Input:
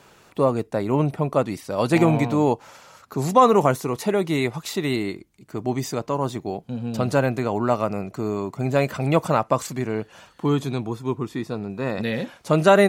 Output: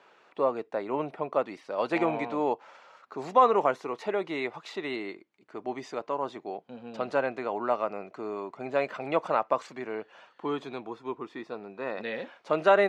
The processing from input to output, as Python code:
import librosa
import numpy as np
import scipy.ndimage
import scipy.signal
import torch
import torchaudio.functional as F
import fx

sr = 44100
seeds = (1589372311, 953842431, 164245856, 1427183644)

y = fx.bandpass_edges(x, sr, low_hz=420.0, high_hz=3000.0)
y = y * librosa.db_to_amplitude(-4.5)